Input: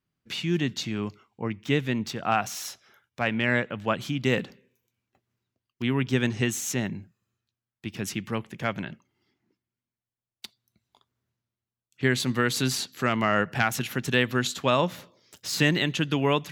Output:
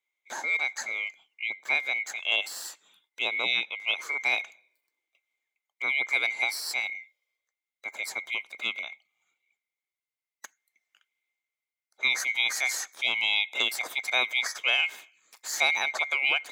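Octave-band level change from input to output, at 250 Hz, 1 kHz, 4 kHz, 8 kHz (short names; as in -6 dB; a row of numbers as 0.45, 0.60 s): -26.5, -7.5, +3.5, -1.5 dB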